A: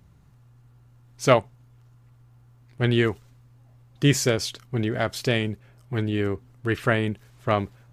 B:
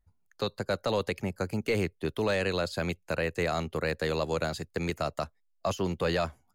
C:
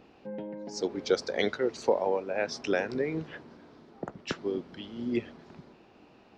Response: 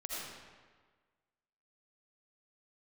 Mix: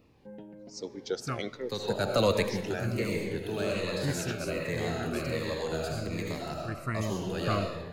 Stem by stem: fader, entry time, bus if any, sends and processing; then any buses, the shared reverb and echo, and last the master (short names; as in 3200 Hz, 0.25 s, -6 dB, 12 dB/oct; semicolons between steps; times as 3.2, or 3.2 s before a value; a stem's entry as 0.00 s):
6.61 s -11.5 dB -> 7.27 s -3.5 dB, 0.00 s, send -20 dB, LPF 12000 Hz; fixed phaser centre 1400 Hz, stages 4
+3.0 dB, 1.30 s, send -6.5 dB, auto duck -21 dB, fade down 0.35 s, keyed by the first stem
-6.5 dB, 0.00 s, send -19.5 dB, dry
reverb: on, RT60 1.5 s, pre-delay 40 ms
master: high shelf 9400 Hz +8 dB; cascading phaser falling 1.3 Hz